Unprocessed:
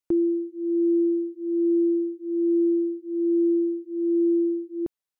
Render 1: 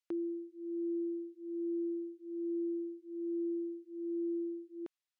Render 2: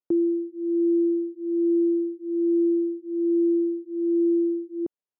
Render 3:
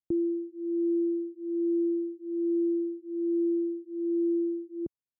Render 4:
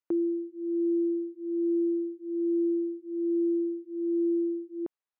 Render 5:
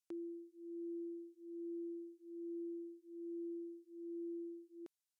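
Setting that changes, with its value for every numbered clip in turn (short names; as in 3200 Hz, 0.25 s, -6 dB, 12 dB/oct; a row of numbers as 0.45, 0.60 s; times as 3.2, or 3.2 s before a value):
band-pass, frequency: 3000, 380, 110, 1000, 7700 Hz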